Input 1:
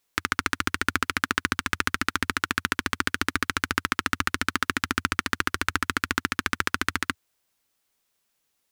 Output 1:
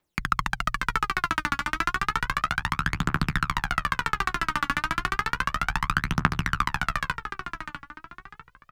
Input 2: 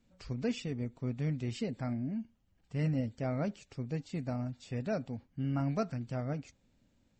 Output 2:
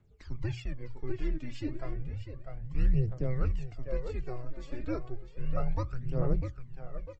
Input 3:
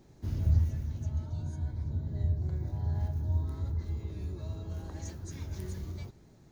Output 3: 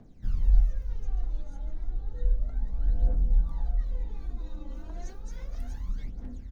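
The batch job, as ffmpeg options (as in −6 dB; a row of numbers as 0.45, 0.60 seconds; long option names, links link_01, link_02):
-filter_complex "[0:a]highpass=49,highshelf=frequency=3800:gain=-11.5,bandreject=frequency=60:width_type=h:width=6,bandreject=frequency=120:width_type=h:width=6,bandreject=frequency=180:width_type=h:width=6,bandreject=frequency=240:width_type=h:width=6,afreqshift=-120,asplit=2[link_01][link_02];[link_02]adelay=649,lowpass=frequency=3600:poles=1,volume=-7dB,asplit=2[link_03][link_04];[link_04]adelay=649,lowpass=frequency=3600:poles=1,volume=0.36,asplit=2[link_05][link_06];[link_06]adelay=649,lowpass=frequency=3600:poles=1,volume=0.36,asplit=2[link_07][link_08];[link_08]adelay=649,lowpass=frequency=3600:poles=1,volume=0.36[link_09];[link_01][link_03][link_05][link_07][link_09]amix=inputs=5:normalize=0,aphaser=in_gain=1:out_gain=1:delay=3.6:decay=0.69:speed=0.32:type=triangular,volume=-1dB"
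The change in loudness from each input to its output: 0.0, 0.0, +1.5 LU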